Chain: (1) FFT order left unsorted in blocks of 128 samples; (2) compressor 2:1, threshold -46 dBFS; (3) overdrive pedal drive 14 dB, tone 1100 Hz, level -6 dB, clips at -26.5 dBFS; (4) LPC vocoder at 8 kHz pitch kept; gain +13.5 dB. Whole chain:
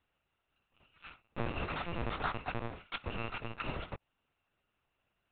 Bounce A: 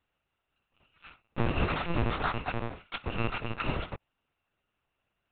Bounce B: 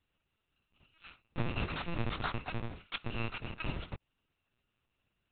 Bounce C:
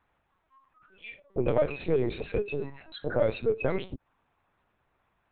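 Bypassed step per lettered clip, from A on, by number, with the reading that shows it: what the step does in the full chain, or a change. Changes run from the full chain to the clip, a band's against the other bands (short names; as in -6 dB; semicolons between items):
2, mean gain reduction 8.5 dB; 3, 1 kHz band -4.5 dB; 1, 500 Hz band +15.5 dB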